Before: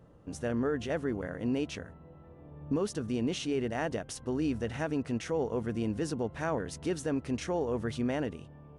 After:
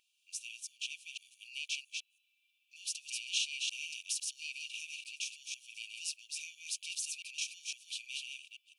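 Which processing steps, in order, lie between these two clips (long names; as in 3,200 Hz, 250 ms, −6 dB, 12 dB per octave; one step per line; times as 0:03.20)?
delay that plays each chunk backwards 168 ms, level −3 dB
linear-phase brick-wall high-pass 2,300 Hz
level +6 dB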